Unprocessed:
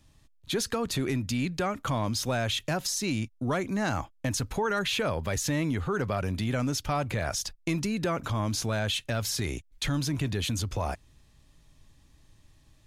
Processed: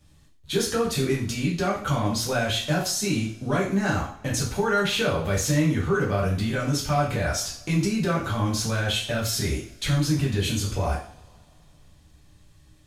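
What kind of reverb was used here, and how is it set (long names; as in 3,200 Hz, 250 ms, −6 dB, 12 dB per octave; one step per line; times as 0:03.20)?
coupled-rooms reverb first 0.44 s, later 2.6 s, from −27 dB, DRR −5.5 dB
level −2.5 dB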